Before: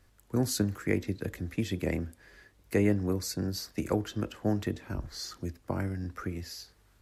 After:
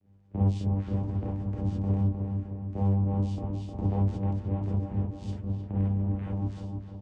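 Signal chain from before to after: octave divider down 1 oct, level +3 dB; treble shelf 2.2 kHz -10 dB; band-stop 1.4 kHz, Q 6.8; comb 1.4 ms, depth 41%; peak limiter -24.5 dBFS, peak gain reduction 10.5 dB; small resonant body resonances 250/510/1300 Hz, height 7 dB; vocoder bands 4, saw 98.5 Hz; rotary cabinet horn 7 Hz; filtered feedback delay 308 ms, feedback 59%, low-pass 2 kHz, level -5 dB; gated-style reverb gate 80 ms rising, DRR -4.5 dB

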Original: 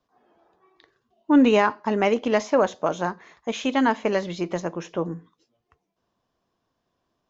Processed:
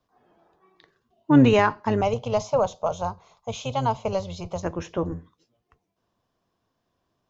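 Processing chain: octave divider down 1 oct, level -4 dB; 2.01–4.63 s: static phaser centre 740 Hz, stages 4

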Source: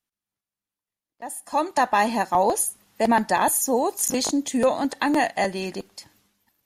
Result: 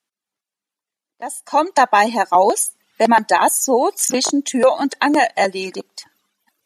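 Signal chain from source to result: high-pass 250 Hz 12 dB/octave; reverb removal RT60 0.76 s; low-pass 10 kHz 12 dB/octave; trim +7.5 dB

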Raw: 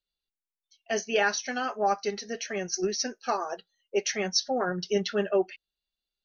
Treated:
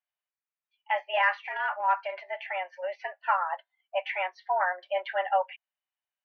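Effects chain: mistuned SSB +180 Hz 480–2500 Hz; 1.13–2.23 s: transient shaper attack -10 dB, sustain +3 dB; trim +3.5 dB

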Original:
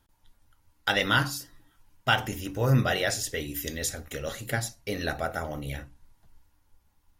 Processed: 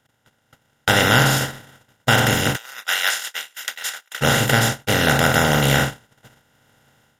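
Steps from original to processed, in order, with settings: spectral levelling over time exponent 0.2; 2.56–4.21 s: high-pass 1.4 kHz 12 dB/octave; gate -20 dBFS, range -41 dB; level rider gain up to 10.5 dB; trim -1 dB

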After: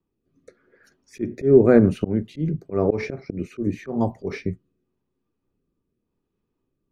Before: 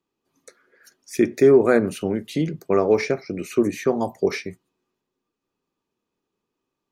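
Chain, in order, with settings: RIAA curve playback; slow attack 147 ms; rotary cabinet horn 0.9 Hz

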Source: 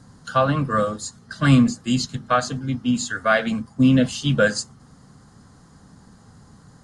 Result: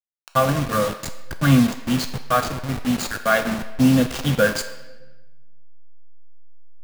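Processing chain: send-on-delta sampling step -22 dBFS; on a send: high-pass 530 Hz 12 dB/octave + reverberation RT60 1.2 s, pre-delay 4 ms, DRR 7 dB

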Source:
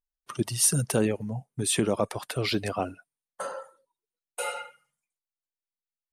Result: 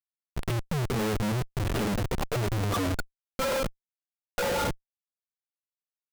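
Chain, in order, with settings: harmonic-percussive separation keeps harmonic; in parallel at +2 dB: compression 12:1, threshold -41 dBFS, peak gain reduction 21 dB; on the sum: low-pass that closes with the level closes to 490 Hz, closed at -25.5 dBFS; treble shelf 3.4 kHz -8.5 dB; Schmitt trigger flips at -42.5 dBFS; trim +7.5 dB

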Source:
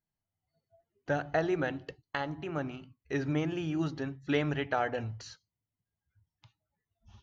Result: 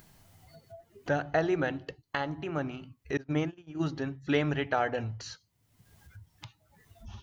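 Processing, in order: upward compressor, threshold -37 dBFS; 3.17–3.84 s: gate -30 dBFS, range -29 dB; trim +2 dB

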